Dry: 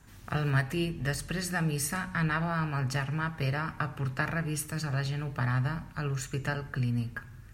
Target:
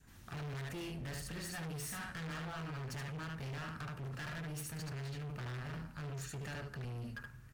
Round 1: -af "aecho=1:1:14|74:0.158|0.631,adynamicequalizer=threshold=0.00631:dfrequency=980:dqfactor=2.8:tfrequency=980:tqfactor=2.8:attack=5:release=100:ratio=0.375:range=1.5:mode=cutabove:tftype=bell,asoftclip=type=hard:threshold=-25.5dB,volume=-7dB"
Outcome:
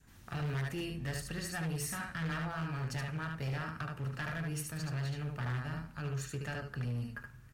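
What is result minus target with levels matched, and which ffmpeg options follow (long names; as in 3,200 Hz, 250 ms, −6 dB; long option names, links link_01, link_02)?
hard clipping: distortion −7 dB
-af "aecho=1:1:14|74:0.158|0.631,adynamicequalizer=threshold=0.00631:dfrequency=980:dqfactor=2.8:tfrequency=980:tqfactor=2.8:attack=5:release=100:ratio=0.375:range=1.5:mode=cutabove:tftype=bell,asoftclip=type=hard:threshold=-34dB,volume=-7dB"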